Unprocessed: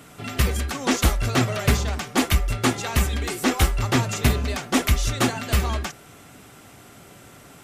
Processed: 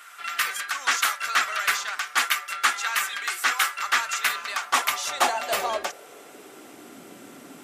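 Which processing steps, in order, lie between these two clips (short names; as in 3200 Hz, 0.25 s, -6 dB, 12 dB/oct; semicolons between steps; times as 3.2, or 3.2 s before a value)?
high-pass sweep 1400 Hz -> 260 Hz, 4.3–7.02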